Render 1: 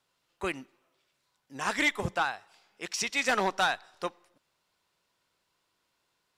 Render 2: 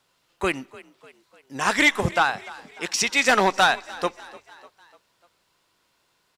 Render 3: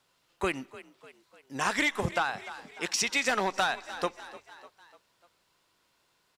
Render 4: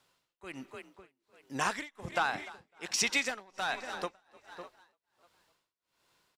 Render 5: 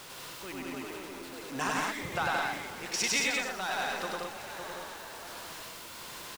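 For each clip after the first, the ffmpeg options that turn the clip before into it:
ffmpeg -i in.wav -filter_complex "[0:a]asplit=5[link_01][link_02][link_03][link_04][link_05];[link_02]adelay=298,afreqshift=41,volume=-20dB[link_06];[link_03]adelay=596,afreqshift=82,volume=-25.7dB[link_07];[link_04]adelay=894,afreqshift=123,volume=-31.4dB[link_08];[link_05]adelay=1192,afreqshift=164,volume=-37dB[link_09];[link_01][link_06][link_07][link_08][link_09]amix=inputs=5:normalize=0,volume=8.5dB" out.wav
ffmpeg -i in.wav -af "acompressor=threshold=-21dB:ratio=6,volume=-3dB" out.wav
ffmpeg -i in.wav -filter_complex "[0:a]asplit=2[link_01][link_02];[link_02]adelay=553.9,volume=-16dB,highshelf=frequency=4000:gain=-12.5[link_03];[link_01][link_03]amix=inputs=2:normalize=0,tremolo=f=1.3:d=0.97" out.wav
ffmpeg -i in.wav -af "aeval=exprs='val(0)+0.5*0.0119*sgn(val(0))':channel_layout=same,aecho=1:1:99.13|174.9|212.8:0.891|0.708|0.631,volume=-3.5dB" out.wav

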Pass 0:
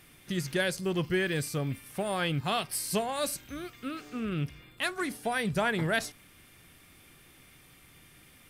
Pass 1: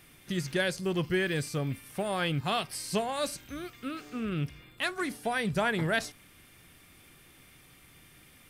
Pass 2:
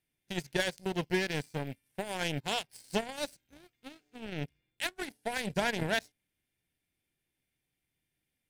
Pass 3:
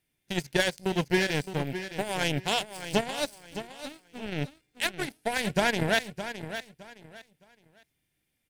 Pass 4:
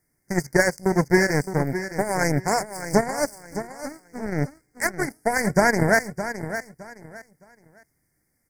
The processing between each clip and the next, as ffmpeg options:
ffmpeg -i in.wav -filter_complex "[0:a]acrossover=split=8400[link_01][link_02];[link_02]acompressor=threshold=-48dB:ratio=4:attack=1:release=60[link_03];[link_01][link_03]amix=inputs=2:normalize=0" out.wav
ffmpeg -i in.wav -af "aeval=exprs='0.178*(cos(1*acos(clip(val(0)/0.178,-1,1)))-cos(1*PI/2))+0.0158*(cos(3*acos(clip(val(0)/0.178,-1,1)))-cos(3*PI/2))+0.0178*(cos(7*acos(clip(val(0)/0.178,-1,1)))-cos(7*PI/2))':channel_layout=same,equalizer=frequency=1200:width_type=o:width=0.27:gain=-14.5,volume=1.5dB" out.wav
ffmpeg -i in.wav -af "aecho=1:1:614|1228|1842:0.282|0.0705|0.0176,volume=5.5dB" out.wav
ffmpeg -i in.wav -af "asuperstop=centerf=3200:order=12:qfactor=1.2,volume=7.5dB" out.wav

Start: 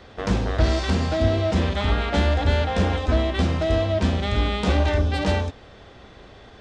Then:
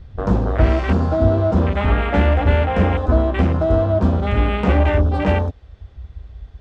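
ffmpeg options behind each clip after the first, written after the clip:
ffmpeg -i in.wav -filter_complex "[0:a]afwtdn=0.0316,acrossover=split=130[link_01][link_02];[link_01]acompressor=mode=upward:threshold=-24dB:ratio=2.5[link_03];[link_03][link_02]amix=inputs=2:normalize=0,volume=5dB" out.wav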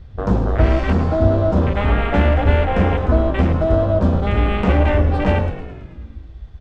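ffmpeg -i in.wav -filter_complex "[0:a]asplit=9[link_01][link_02][link_03][link_04][link_05][link_06][link_07][link_08][link_09];[link_02]adelay=109,afreqshift=-52,volume=-12dB[link_10];[link_03]adelay=218,afreqshift=-104,volume=-15.7dB[link_11];[link_04]adelay=327,afreqshift=-156,volume=-19.5dB[link_12];[link_05]adelay=436,afreqshift=-208,volume=-23.2dB[link_13];[link_06]adelay=545,afreqshift=-260,volume=-27dB[link_14];[link_07]adelay=654,afreqshift=-312,volume=-30.7dB[link_15];[link_08]adelay=763,afreqshift=-364,volume=-34.5dB[link_16];[link_09]adelay=872,afreqshift=-416,volume=-38.2dB[link_17];[link_01][link_10][link_11][link_12][link_13][link_14][link_15][link_16][link_17]amix=inputs=9:normalize=0" out.wav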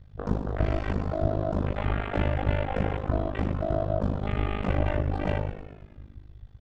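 ffmpeg -i in.wav -af "tremolo=f=51:d=1,volume=-7dB" out.wav

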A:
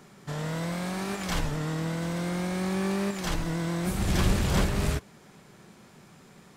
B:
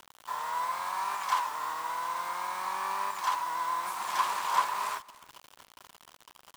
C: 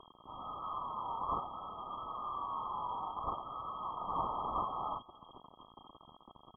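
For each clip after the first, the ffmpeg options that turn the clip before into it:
ffmpeg -i in.wav -af "highpass=frequency=1000:width_type=q:width=11,acrusher=bits=6:mix=0:aa=0.000001,aecho=1:1:295:0.0794,volume=-5dB" out.wav
ffmpeg -i in.wav -af "afftfilt=real='re*(1-between(b*sr/4096,100,2000))':imag='im*(1-between(b*sr/4096,100,2000))':win_size=4096:overlap=0.75,lowpass=frequency=2800:width_type=q:width=0.5098,lowpass=frequency=2800:width_type=q:width=0.6013,lowpass=frequency=2800:width_type=q:width=0.9,lowpass=frequency=2800:width_type=q:width=2.563,afreqshift=-3300,aecho=1:1:1:0.43,volume=8.5dB" out.wav

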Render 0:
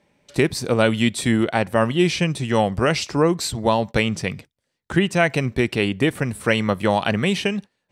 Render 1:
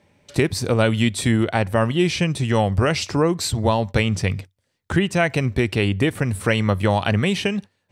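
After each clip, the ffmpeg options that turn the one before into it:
ffmpeg -i in.wav -filter_complex "[0:a]asplit=2[link_01][link_02];[link_02]acompressor=threshold=-25dB:ratio=6,volume=2dB[link_03];[link_01][link_03]amix=inputs=2:normalize=0,equalizer=frequency=94:width_type=o:width=0.46:gain=12,volume=-4dB" out.wav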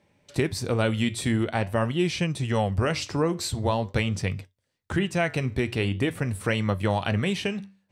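ffmpeg -i in.wav -af "flanger=delay=5.8:depth=7.1:regen=-79:speed=0.45:shape=sinusoidal,volume=-1.5dB" out.wav

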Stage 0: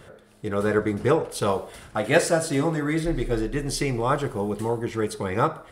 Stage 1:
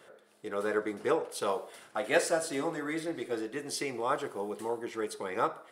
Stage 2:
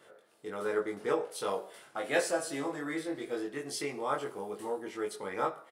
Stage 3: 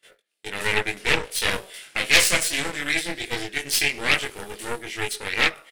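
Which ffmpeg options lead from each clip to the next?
ffmpeg -i in.wav -af "highpass=330,volume=-6.5dB" out.wav
ffmpeg -i in.wav -filter_complex "[0:a]asplit=2[link_01][link_02];[link_02]adelay=21,volume=-2dB[link_03];[link_01][link_03]amix=inputs=2:normalize=0,volume=-4dB" out.wav
ffmpeg -i in.wav -af "aeval=exprs='0.211*(cos(1*acos(clip(val(0)/0.211,-1,1)))-cos(1*PI/2))+0.0596*(cos(8*acos(clip(val(0)/0.211,-1,1)))-cos(8*PI/2))':channel_layout=same,highshelf=frequency=1600:width_type=q:width=1.5:gain=12.5,agate=range=-23dB:threshold=-52dB:ratio=16:detection=peak,volume=1.5dB" out.wav

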